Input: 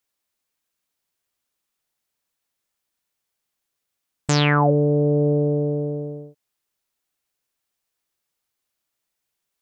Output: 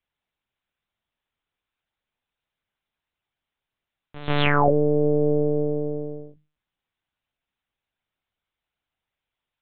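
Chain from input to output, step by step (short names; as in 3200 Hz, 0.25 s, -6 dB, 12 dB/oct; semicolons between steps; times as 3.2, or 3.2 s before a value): notches 50/100/150/200/250/300 Hz; pre-echo 0.139 s -16 dB; LPC vocoder at 8 kHz pitch kept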